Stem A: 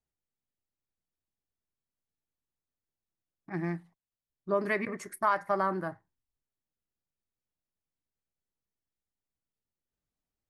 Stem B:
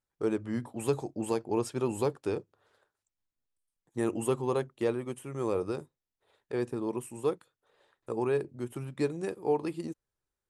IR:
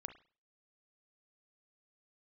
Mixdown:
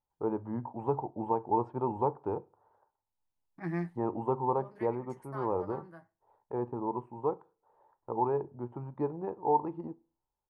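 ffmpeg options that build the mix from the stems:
-filter_complex "[0:a]flanger=delay=9.9:depth=2.2:regen=37:speed=1.8:shape=triangular,adelay=100,volume=1,asplit=2[s0][s1];[s1]volume=0.0631[s2];[1:a]lowpass=f=900:t=q:w=6.9,lowshelf=f=170:g=5.5,volume=0.398,asplit=3[s3][s4][s5];[s4]volume=0.562[s6];[s5]apad=whole_len=467081[s7];[s0][s7]sidechaincompress=threshold=0.00316:ratio=8:attack=16:release=733[s8];[2:a]atrim=start_sample=2205[s9];[s2][s6]amix=inputs=2:normalize=0[s10];[s10][s9]afir=irnorm=-1:irlink=0[s11];[s8][s3][s11]amix=inputs=3:normalize=0"

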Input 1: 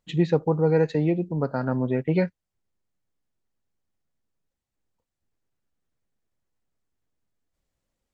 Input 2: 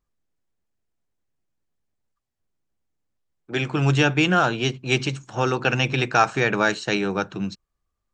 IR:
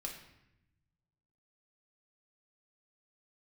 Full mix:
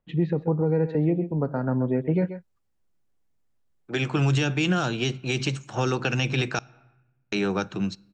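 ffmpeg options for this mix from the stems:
-filter_complex "[0:a]lowpass=2900,highshelf=f=2100:g=-8,volume=1.12,asplit=2[s0][s1];[s1]volume=0.188[s2];[1:a]adelay=400,volume=1,asplit=3[s3][s4][s5];[s3]atrim=end=6.59,asetpts=PTS-STARTPTS,afade=t=out:st=6.586:d=0.004:c=hsin[s6];[s4]atrim=start=6.59:end=7.32,asetpts=PTS-STARTPTS,volume=0[s7];[s5]atrim=start=7.32,asetpts=PTS-STARTPTS,afade=t=in:d=0.004:c=hsin[s8];[s6][s7][s8]concat=n=3:v=0:a=1,asplit=2[s9][s10];[s10]volume=0.106[s11];[2:a]atrim=start_sample=2205[s12];[s11][s12]afir=irnorm=-1:irlink=0[s13];[s2]aecho=0:1:131:1[s14];[s0][s9][s13][s14]amix=inputs=4:normalize=0,acrossover=split=350|3000[s15][s16][s17];[s16]acompressor=threshold=0.0501:ratio=6[s18];[s15][s18][s17]amix=inputs=3:normalize=0,alimiter=limit=0.2:level=0:latency=1:release=48"

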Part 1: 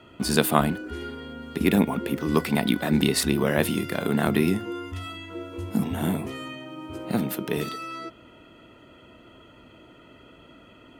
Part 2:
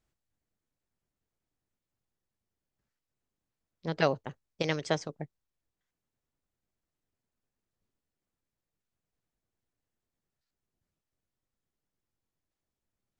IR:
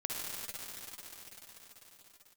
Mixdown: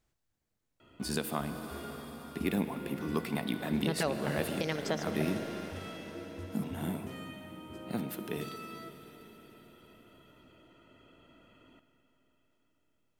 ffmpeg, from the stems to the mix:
-filter_complex "[0:a]adelay=800,volume=0.251,asplit=2[s0][s1];[s1]volume=0.316[s2];[1:a]volume=1.19,asplit=2[s3][s4];[s4]volume=0.251[s5];[2:a]atrim=start_sample=2205[s6];[s2][s5]amix=inputs=2:normalize=0[s7];[s7][s6]afir=irnorm=-1:irlink=0[s8];[s0][s3][s8]amix=inputs=3:normalize=0,alimiter=limit=0.126:level=0:latency=1:release=347"

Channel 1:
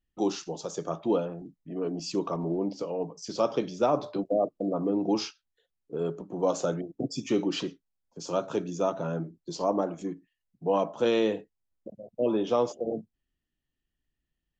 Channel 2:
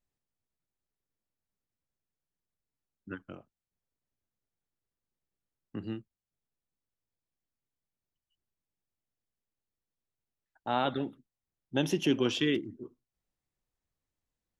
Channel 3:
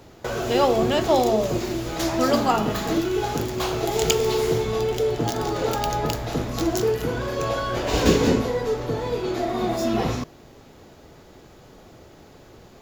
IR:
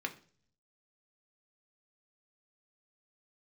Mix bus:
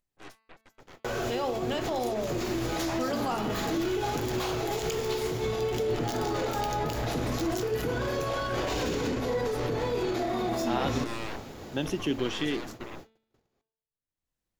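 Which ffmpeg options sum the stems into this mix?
-filter_complex "[0:a]acrossover=split=180|1300[s0][s1][s2];[s0]acompressor=threshold=0.00126:ratio=4[s3];[s1]acompressor=threshold=0.0282:ratio=4[s4];[s2]acompressor=threshold=0.00631:ratio=4[s5];[s3][s4][s5]amix=inputs=3:normalize=0,alimiter=level_in=1.58:limit=0.0631:level=0:latency=1:release=28,volume=0.631,aeval=exprs='0.0422*(cos(1*acos(clip(val(0)/0.0422,-1,1)))-cos(1*PI/2))+0.00531*(cos(2*acos(clip(val(0)/0.0422,-1,1)))-cos(2*PI/2))+0.0188*(cos(3*acos(clip(val(0)/0.0422,-1,1)))-cos(3*PI/2))+0.00133*(cos(4*acos(clip(val(0)/0.0422,-1,1)))-cos(4*PI/2))+0.0168*(cos(8*acos(clip(val(0)/0.0422,-1,1)))-cos(8*PI/2))':c=same,volume=0.282,asplit=2[s6][s7];[s7]volume=0.224[s8];[1:a]volume=0.794[s9];[2:a]acompressor=threshold=0.0708:ratio=6,adelay=800,volume=0.631,asplit=2[s10][s11];[s11]volume=0.224[s12];[s6][s10]amix=inputs=2:normalize=0,dynaudnorm=f=340:g=17:m=3.55,alimiter=limit=0.0708:level=0:latency=1:release=64,volume=1[s13];[3:a]atrim=start_sample=2205[s14];[s8][s12]amix=inputs=2:normalize=0[s15];[s15][s14]afir=irnorm=-1:irlink=0[s16];[s9][s13][s16]amix=inputs=3:normalize=0,agate=range=0.00708:threshold=0.00708:ratio=16:detection=peak,bandreject=f=222.2:t=h:w=4,bandreject=f=444.4:t=h:w=4,bandreject=f=666.6:t=h:w=4,bandreject=f=888.8:t=h:w=4,bandreject=f=1111:t=h:w=4,bandreject=f=1333.2:t=h:w=4,bandreject=f=1555.4:t=h:w=4,bandreject=f=1777.6:t=h:w=4,bandreject=f=1999.8:t=h:w=4,bandreject=f=2222:t=h:w=4,bandreject=f=2444.2:t=h:w=4,bandreject=f=2666.4:t=h:w=4,bandreject=f=2888.6:t=h:w=4,bandreject=f=3110.8:t=h:w=4,bandreject=f=3333:t=h:w=4,bandreject=f=3555.2:t=h:w=4,bandreject=f=3777.4:t=h:w=4,bandreject=f=3999.6:t=h:w=4,bandreject=f=4221.8:t=h:w=4,bandreject=f=4444:t=h:w=4,bandreject=f=4666.2:t=h:w=4,bandreject=f=4888.4:t=h:w=4,acompressor=mode=upward:threshold=0.00282:ratio=2.5"

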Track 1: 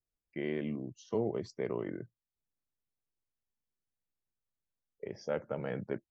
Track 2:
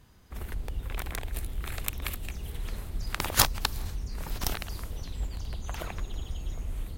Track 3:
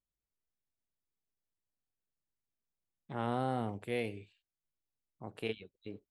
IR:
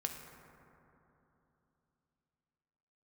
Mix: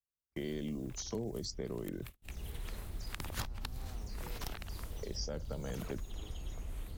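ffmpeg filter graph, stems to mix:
-filter_complex "[0:a]aexciter=amount=11.4:drive=5.9:freq=3800,volume=1.33[s0];[1:a]volume=0.596,afade=t=in:st=2.16:d=0.23:silence=0.316228[s1];[2:a]acompressor=threshold=0.0126:ratio=6,adelay=350,volume=0.299[s2];[s0][s1][s2]amix=inputs=3:normalize=0,agate=range=0.02:threshold=0.00708:ratio=16:detection=peak,acrossover=split=280|4900[s3][s4][s5];[s3]acompressor=threshold=0.0126:ratio=4[s6];[s4]acompressor=threshold=0.00631:ratio=4[s7];[s5]acompressor=threshold=0.00282:ratio=4[s8];[s6][s7][s8]amix=inputs=3:normalize=0"

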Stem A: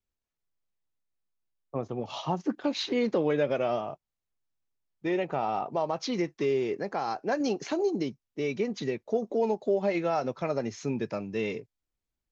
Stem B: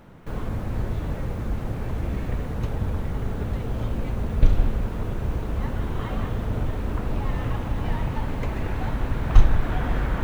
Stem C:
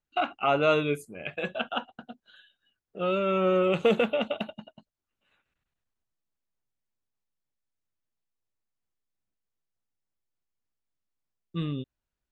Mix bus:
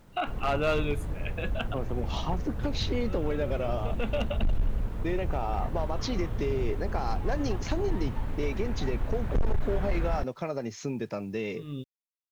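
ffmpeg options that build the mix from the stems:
-filter_complex "[0:a]acompressor=threshold=0.0251:ratio=2.5,volume=1.19,asplit=2[s0][s1];[1:a]volume=0.355[s2];[2:a]volume=0.668[s3];[s1]apad=whole_len=543037[s4];[s3][s4]sidechaincompress=threshold=0.00355:ratio=8:attack=16:release=144[s5];[s0][s2][s5]amix=inputs=3:normalize=0,acrusher=bits=10:mix=0:aa=0.000001,lowshelf=f=67:g=7.5,volume=10,asoftclip=hard,volume=0.1"

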